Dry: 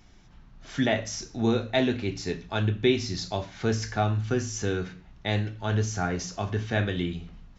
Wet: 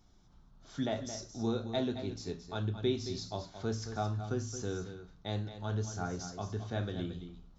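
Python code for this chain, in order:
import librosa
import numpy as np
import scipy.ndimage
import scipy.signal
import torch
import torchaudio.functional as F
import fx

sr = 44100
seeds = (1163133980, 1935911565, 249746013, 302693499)

y = fx.band_shelf(x, sr, hz=2200.0, db=-9.5, octaves=1.0)
y = y + 10.0 ** (-10.5 / 20.0) * np.pad(y, (int(221 * sr / 1000.0), 0))[:len(y)]
y = y * 10.0 ** (-9.0 / 20.0)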